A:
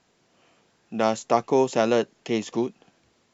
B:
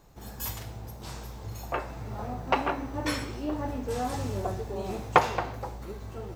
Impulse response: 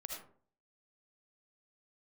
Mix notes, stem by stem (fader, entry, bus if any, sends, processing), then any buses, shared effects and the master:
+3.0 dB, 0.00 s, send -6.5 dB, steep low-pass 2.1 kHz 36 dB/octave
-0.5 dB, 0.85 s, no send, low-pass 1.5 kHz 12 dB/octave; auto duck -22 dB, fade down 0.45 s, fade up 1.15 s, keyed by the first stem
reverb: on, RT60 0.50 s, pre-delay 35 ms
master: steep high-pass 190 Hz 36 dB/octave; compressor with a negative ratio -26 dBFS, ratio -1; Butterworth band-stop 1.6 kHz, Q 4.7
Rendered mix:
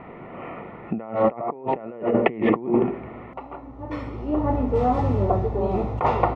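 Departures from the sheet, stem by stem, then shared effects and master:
stem A +3.0 dB -> +14.0 dB; master: missing steep high-pass 190 Hz 36 dB/octave

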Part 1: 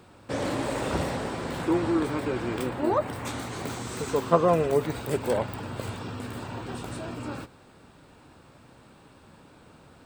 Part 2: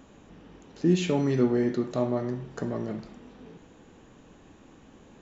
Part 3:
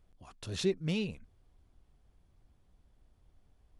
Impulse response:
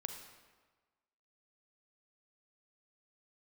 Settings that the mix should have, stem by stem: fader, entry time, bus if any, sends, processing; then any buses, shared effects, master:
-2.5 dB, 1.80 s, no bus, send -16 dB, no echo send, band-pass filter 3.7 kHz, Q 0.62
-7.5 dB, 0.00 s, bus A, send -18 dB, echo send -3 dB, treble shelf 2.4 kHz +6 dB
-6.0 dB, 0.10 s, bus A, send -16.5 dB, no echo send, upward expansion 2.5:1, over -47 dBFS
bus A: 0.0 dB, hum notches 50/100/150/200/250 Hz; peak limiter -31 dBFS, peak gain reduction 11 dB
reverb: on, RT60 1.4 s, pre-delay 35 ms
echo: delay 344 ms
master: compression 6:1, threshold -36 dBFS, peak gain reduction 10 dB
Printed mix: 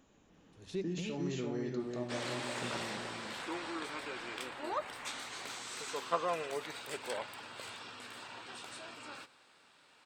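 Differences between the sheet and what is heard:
stem 2 -7.5 dB -> -14.5 dB; stem 3 -6.0 dB -> +1.0 dB; master: missing compression 6:1, threshold -36 dBFS, peak gain reduction 10 dB

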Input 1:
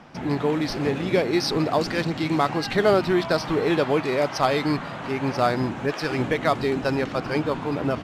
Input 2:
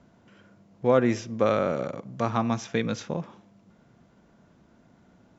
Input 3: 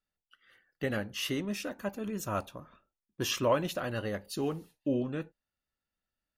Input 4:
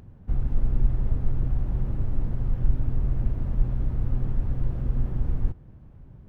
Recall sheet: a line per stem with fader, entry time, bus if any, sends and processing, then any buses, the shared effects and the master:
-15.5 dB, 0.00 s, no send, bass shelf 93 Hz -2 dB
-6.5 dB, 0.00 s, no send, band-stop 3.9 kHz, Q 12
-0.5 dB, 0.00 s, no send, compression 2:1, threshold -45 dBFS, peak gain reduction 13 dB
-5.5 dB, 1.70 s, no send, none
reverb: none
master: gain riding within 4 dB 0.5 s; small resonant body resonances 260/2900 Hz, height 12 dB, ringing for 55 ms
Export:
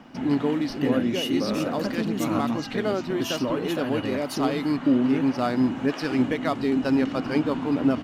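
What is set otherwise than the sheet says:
stem 1 -15.5 dB -> -7.0 dB; stem 3 -0.5 dB -> +10.0 dB; stem 4: muted

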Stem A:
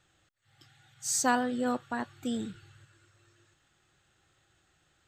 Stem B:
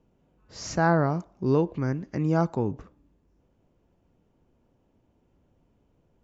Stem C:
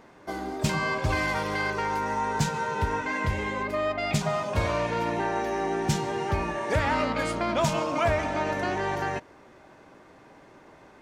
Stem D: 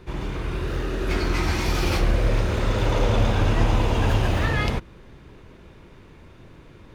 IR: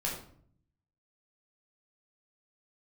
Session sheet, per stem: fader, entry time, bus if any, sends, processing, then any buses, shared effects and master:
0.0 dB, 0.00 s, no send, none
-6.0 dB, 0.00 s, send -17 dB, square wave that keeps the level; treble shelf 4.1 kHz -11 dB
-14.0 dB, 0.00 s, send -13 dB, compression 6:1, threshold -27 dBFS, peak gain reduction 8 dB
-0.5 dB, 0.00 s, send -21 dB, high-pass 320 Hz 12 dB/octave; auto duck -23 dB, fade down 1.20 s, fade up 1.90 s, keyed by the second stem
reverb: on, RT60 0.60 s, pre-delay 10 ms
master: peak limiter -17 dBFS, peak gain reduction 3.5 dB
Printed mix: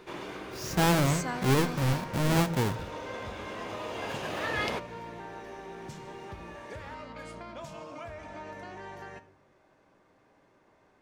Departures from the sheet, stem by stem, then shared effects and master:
stem A 0.0 dB -> -9.5 dB; stem B: missing treble shelf 4.1 kHz -11 dB

